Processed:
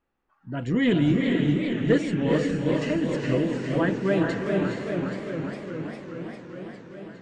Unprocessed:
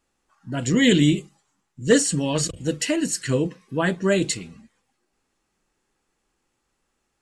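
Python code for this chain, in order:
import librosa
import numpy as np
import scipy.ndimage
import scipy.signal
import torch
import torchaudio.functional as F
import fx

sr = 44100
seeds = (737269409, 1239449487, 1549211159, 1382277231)

p1 = fx.fold_sine(x, sr, drive_db=5, ceiling_db=-4.0)
p2 = x + F.gain(torch.from_numpy(p1), -10.0).numpy()
p3 = scipy.signal.sosfilt(scipy.signal.butter(2, 2200.0, 'lowpass', fs=sr, output='sos'), p2)
p4 = fx.echo_diffused(p3, sr, ms=453, feedback_pct=42, wet_db=-3)
p5 = fx.echo_warbled(p4, sr, ms=408, feedback_pct=76, rate_hz=2.8, cents=162, wet_db=-8.0)
y = F.gain(torch.from_numpy(p5), -9.0).numpy()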